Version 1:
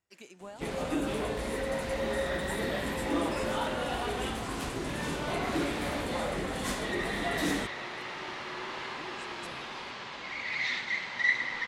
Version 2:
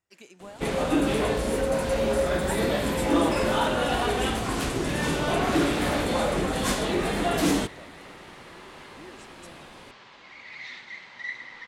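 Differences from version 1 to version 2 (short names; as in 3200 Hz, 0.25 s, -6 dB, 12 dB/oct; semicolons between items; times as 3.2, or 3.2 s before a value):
first sound +6.0 dB; second sound -9.0 dB; reverb: on, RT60 1.6 s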